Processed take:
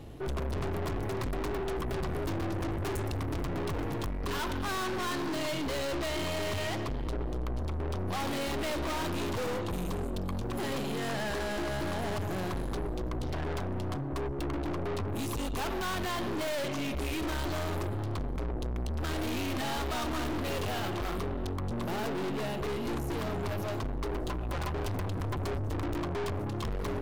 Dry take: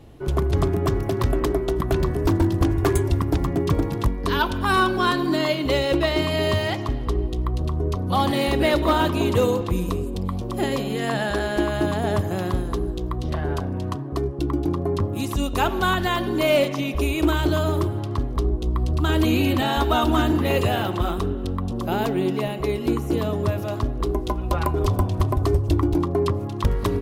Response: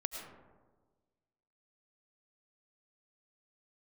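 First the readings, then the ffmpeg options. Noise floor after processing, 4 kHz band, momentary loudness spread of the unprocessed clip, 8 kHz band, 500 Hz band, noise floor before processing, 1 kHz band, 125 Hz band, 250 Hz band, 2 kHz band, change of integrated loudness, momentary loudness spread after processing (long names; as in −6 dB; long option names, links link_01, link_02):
−34 dBFS, −9.5 dB, 7 LU, −5.0 dB, −11.5 dB, −29 dBFS, −10.5 dB, −11.5 dB, −11.5 dB, −9.5 dB, −11.0 dB, 3 LU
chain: -af "aeval=exprs='(tanh(50.1*val(0)+0.4)-tanh(0.4))/50.1':channel_layout=same,volume=2dB"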